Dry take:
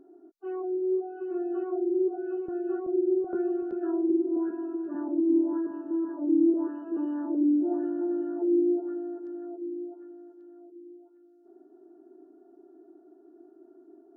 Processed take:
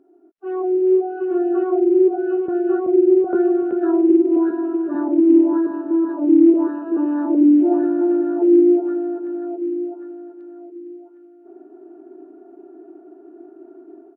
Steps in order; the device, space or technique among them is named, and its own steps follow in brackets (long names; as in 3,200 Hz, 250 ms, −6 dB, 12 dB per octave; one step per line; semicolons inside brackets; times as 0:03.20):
Bluetooth headset (high-pass filter 240 Hz 6 dB per octave; automatic gain control gain up to 13.5 dB; downsampling to 8,000 Hz; SBC 64 kbit/s 44,100 Hz)